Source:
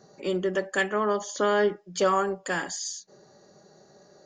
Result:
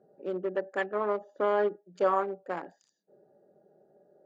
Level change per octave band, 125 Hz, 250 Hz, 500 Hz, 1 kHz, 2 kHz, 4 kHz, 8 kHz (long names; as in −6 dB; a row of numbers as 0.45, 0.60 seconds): below −10 dB, −7.5 dB, −3.0 dB, −3.5 dB, −9.0 dB, below −15 dB, below −30 dB